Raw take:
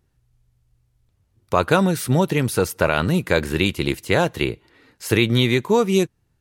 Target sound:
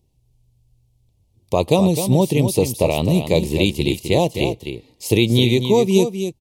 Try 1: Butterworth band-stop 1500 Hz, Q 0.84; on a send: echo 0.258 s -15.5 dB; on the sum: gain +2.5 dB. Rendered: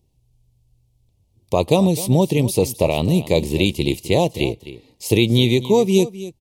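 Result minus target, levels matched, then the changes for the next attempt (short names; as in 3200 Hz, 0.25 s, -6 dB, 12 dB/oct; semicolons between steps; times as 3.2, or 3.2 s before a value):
echo-to-direct -7 dB
change: echo 0.258 s -8.5 dB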